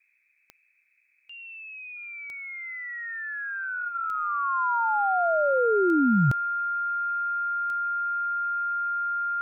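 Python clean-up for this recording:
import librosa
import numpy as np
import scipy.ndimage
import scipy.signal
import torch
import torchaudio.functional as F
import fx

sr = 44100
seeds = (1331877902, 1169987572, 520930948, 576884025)

y = fx.fix_declick_ar(x, sr, threshold=10.0)
y = fx.notch(y, sr, hz=1400.0, q=30.0)
y = fx.noise_reduce(y, sr, print_start_s=0.0, print_end_s=0.5, reduce_db=6.0)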